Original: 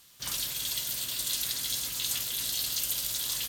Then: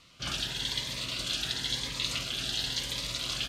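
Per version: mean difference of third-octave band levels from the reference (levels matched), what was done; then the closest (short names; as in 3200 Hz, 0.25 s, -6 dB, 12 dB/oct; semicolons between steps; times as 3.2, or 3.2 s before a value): 8.5 dB: LPF 3100 Hz 12 dB/oct; cascading phaser rising 0.96 Hz; gain +8.5 dB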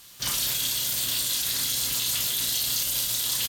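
1.5 dB: limiter -24.5 dBFS, peak gain reduction 10.5 dB; doubler 34 ms -5 dB; gain +7.5 dB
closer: second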